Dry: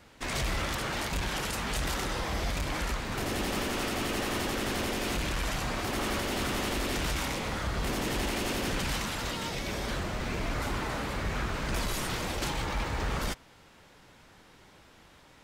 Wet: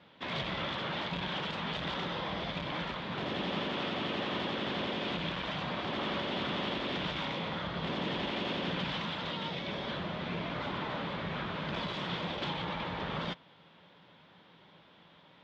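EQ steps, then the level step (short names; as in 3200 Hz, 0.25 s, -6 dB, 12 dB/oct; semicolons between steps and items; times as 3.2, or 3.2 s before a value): speaker cabinet 130–3900 Hz, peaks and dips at 170 Hz +10 dB, 580 Hz +4 dB, 990 Hz +4 dB, 3400 Hz +9 dB; -4.5 dB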